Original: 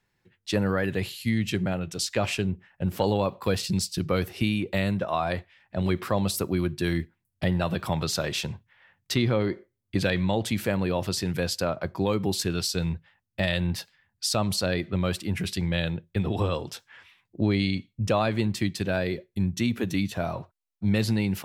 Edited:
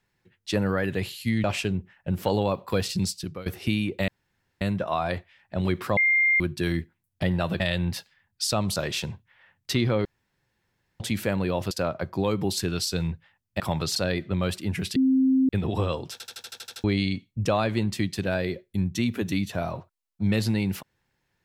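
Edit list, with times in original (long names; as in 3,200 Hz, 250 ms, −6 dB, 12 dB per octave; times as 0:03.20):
0:01.44–0:02.18: remove
0:03.78–0:04.20: fade out, to −20 dB
0:04.82: splice in room tone 0.53 s
0:06.18–0:06.61: beep over 2,110 Hz −17.5 dBFS
0:07.81–0:08.17: swap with 0:13.42–0:14.58
0:09.46–0:10.41: fill with room tone
0:11.12–0:11.53: remove
0:15.58–0:16.11: beep over 263 Hz −17 dBFS
0:16.74: stutter in place 0.08 s, 9 plays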